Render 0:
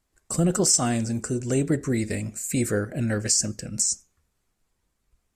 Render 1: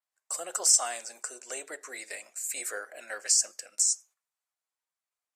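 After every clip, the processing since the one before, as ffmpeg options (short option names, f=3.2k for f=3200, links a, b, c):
-af "highpass=f=640:w=0.5412,highpass=f=640:w=1.3066,agate=range=-10dB:threshold=-51dB:ratio=16:detection=peak,adynamicequalizer=threshold=0.0282:dfrequency=6300:dqfactor=0.7:tfrequency=6300:tqfactor=0.7:attack=5:release=100:ratio=0.375:range=2:mode=boostabove:tftype=highshelf,volume=-3.5dB"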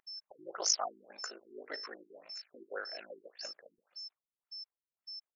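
-af "aeval=exprs='val(0)*sin(2*PI*26*n/s)':c=same,aeval=exprs='val(0)+0.00708*sin(2*PI*5300*n/s)':c=same,afftfilt=real='re*lt(b*sr/1024,400*pow(7200/400,0.5+0.5*sin(2*PI*1.8*pts/sr)))':imag='im*lt(b*sr/1024,400*pow(7200/400,0.5+0.5*sin(2*PI*1.8*pts/sr)))':win_size=1024:overlap=0.75,volume=1.5dB"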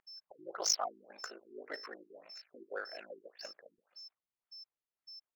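-af "adynamicsmooth=sensitivity=7.5:basefreq=4.3k"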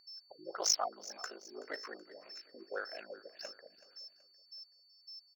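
-af "aeval=exprs='val(0)+0.000631*sin(2*PI*4500*n/s)':c=same,aecho=1:1:377|754|1131:0.126|0.0516|0.0212,volume=1dB"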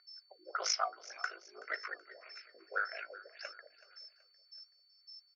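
-af "flanger=delay=2.7:depth=6.9:regen=68:speed=0.56:shape=triangular,highpass=f=480:w=0.5412,highpass=f=480:w=1.3066,equalizer=f=540:t=q:w=4:g=-5,equalizer=f=880:t=q:w=4:g=-9,equalizer=f=1.4k:t=q:w=4:g=9,equalizer=f=2.2k:t=q:w=4:g=9,equalizer=f=4.3k:t=q:w=4:g=-4,lowpass=f=5.2k:w=0.5412,lowpass=f=5.2k:w=1.3066,volume=6dB"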